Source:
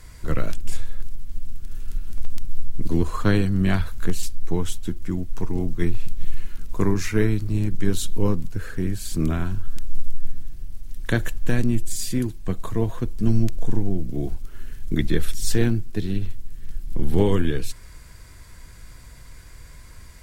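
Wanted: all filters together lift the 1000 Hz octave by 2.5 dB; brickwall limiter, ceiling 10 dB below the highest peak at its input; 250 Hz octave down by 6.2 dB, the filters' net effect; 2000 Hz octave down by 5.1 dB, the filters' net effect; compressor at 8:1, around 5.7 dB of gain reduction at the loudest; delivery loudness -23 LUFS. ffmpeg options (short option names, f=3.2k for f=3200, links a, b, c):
-af "equalizer=f=250:t=o:g=-9,equalizer=f=1k:t=o:g=6,equalizer=f=2k:t=o:g=-9,acompressor=threshold=-16dB:ratio=8,volume=12dB,alimiter=limit=-7dB:level=0:latency=1"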